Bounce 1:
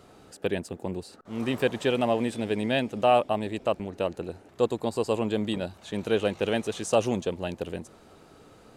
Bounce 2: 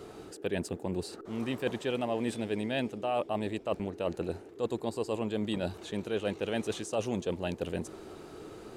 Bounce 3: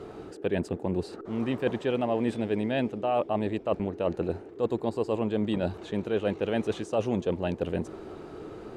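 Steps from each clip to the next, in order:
reverse; compression 5:1, threshold -33 dBFS, peak gain reduction 15.5 dB; reverse; band noise 300–450 Hz -53 dBFS; trim +3.5 dB
low-pass 1.8 kHz 6 dB/octave; trim +5 dB

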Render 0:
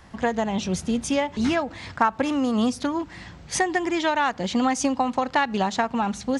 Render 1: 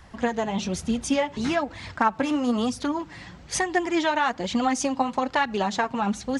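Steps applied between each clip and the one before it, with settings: flange 1.1 Hz, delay 0.5 ms, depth 7.3 ms, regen +37%; trim +3 dB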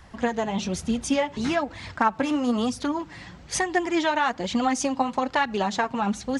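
no audible change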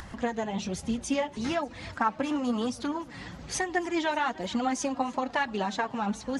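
coarse spectral quantiser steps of 15 dB; upward compressor, threshold -29 dBFS; modulated delay 297 ms, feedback 68%, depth 135 cents, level -22 dB; trim -4.5 dB

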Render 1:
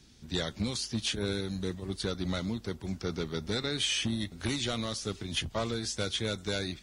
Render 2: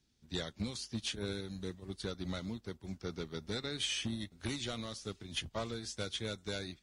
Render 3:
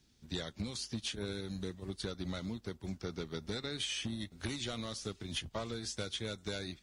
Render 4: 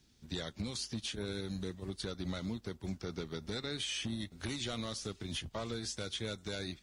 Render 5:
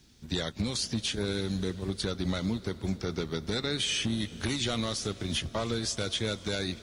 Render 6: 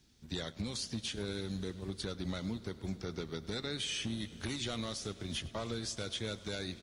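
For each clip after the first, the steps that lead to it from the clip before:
upward expansion 1.5:1, over -53 dBFS; trim -5 dB
compression 3:1, threshold -44 dBFS, peak gain reduction 9.5 dB; trim +6.5 dB
peak limiter -30 dBFS, peak gain reduction 5 dB; trim +1.5 dB
reverberation RT60 6.1 s, pre-delay 201 ms, DRR 17 dB; trim +8 dB
delay 104 ms -19.5 dB; trim -7.5 dB

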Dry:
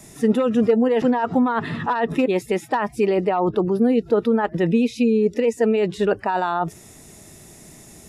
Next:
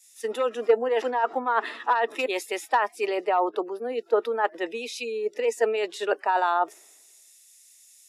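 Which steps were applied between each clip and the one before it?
Bessel high-pass 570 Hz, order 8; three bands expanded up and down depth 100%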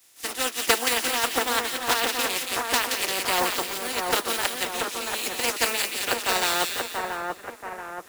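spectral contrast reduction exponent 0.25; comb of notches 210 Hz; on a send: two-band feedback delay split 1.9 kHz, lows 682 ms, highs 174 ms, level -3.5 dB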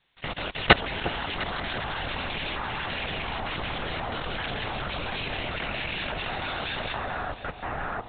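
LPC vocoder at 8 kHz whisper; level held to a coarse grid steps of 20 dB; echo whose repeats swap between lows and highs 353 ms, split 960 Hz, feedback 55%, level -10.5 dB; trim +8 dB

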